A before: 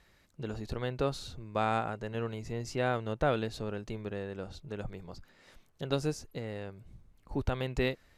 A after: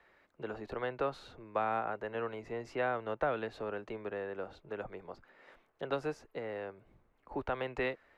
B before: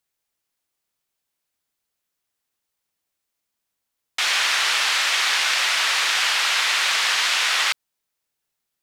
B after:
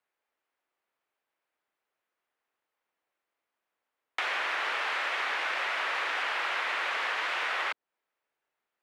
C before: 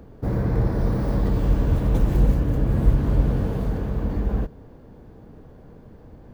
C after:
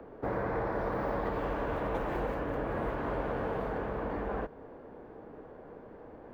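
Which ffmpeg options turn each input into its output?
-filter_complex "[0:a]acrossover=split=310 2500:gain=0.126 1 0.0891[s0][s1][s2];[s0][s1][s2]amix=inputs=3:normalize=0,acrossover=split=230|570[s3][s4][s5];[s3]acompressor=threshold=0.00794:ratio=4[s6];[s4]acompressor=threshold=0.00562:ratio=4[s7];[s5]acompressor=threshold=0.0178:ratio=4[s8];[s6][s7][s8]amix=inputs=3:normalize=0,volume=1.58"

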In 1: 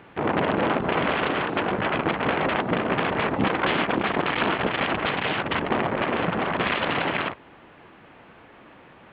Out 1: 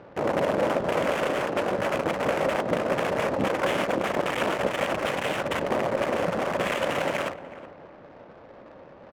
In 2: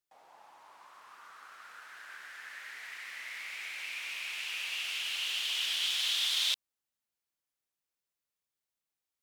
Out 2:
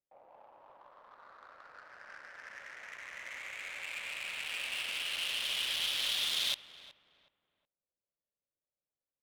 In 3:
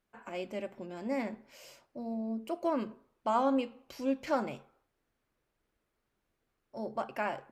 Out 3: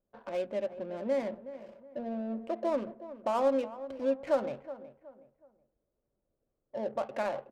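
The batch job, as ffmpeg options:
-filter_complex "[0:a]equalizer=f=560:t=o:w=0.42:g=11,asplit=2[s0][s1];[s1]acompressor=threshold=0.0282:ratio=6,volume=1.19[s2];[s0][s2]amix=inputs=2:normalize=0,aexciter=amount=1.4:drive=9:freq=8900,adynamicsmooth=sensitivity=6:basefreq=650,asplit=2[s3][s4];[s4]adelay=370,lowpass=f=1600:p=1,volume=0.2,asplit=2[s5][s6];[s6]adelay=370,lowpass=f=1600:p=1,volume=0.35,asplit=2[s7][s8];[s8]adelay=370,lowpass=f=1600:p=1,volume=0.35[s9];[s3][s5][s7][s9]amix=inputs=4:normalize=0,volume=0.447"

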